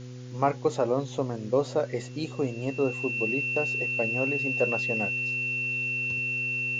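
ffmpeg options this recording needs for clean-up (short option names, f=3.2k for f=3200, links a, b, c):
-af "adeclick=t=4,bandreject=f=125.1:t=h:w=4,bandreject=f=250.2:t=h:w=4,bandreject=f=375.3:t=h:w=4,bandreject=f=500.4:t=h:w=4,bandreject=f=2.7k:w=30,afwtdn=0.0025"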